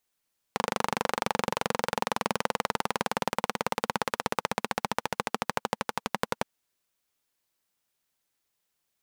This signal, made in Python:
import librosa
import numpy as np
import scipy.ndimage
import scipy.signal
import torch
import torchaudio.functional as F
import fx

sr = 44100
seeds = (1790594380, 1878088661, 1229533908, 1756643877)

y = fx.engine_single_rev(sr, seeds[0], length_s=5.87, rpm=3000, resonances_hz=(220.0, 500.0, 840.0), end_rpm=1300)